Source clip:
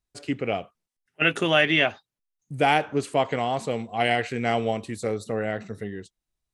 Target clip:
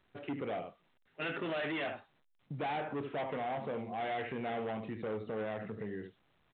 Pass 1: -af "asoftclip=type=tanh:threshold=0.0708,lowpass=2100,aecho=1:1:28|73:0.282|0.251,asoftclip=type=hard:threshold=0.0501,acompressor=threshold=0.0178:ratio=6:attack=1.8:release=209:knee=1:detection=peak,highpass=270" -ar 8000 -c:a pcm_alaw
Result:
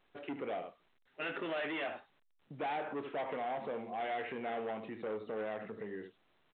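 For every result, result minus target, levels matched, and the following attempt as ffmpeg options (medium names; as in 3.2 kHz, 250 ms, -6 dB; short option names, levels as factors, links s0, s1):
125 Hz band -8.5 dB; saturation: distortion +7 dB
-af "asoftclip=type=tanh:threshold=0.0708,lowpass=2100,aecho=1:1:28|73:0.282|0.251,asoftclip=type=hard:threshold=0.0501,acompressor=threshold=0.0178:ratio=6:attack=1.8:release=209:knee=1:detection=peak,highpass=120" -ar 8000 -c:a pcm_alaw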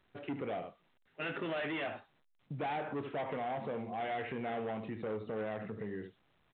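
saturation: distortion +7 dB
-af "asoftclip=type=tanh:threshold=0.188,lowpass=2100,aecho=1:1:28|73:0.282|0.251,asoftclip=type=hard:threshold=0.0501,acompressor=threshold=0.0178:ratio=6:attack=1.8:release=209:knee=1:detection=peak,highpass=120" -ar 8000 -c:a pcm_alaw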